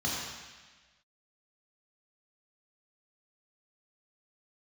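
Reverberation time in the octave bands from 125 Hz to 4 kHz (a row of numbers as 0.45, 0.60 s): 1.3, 1.3, 1.3, 1.3, 1.6, 1.5 s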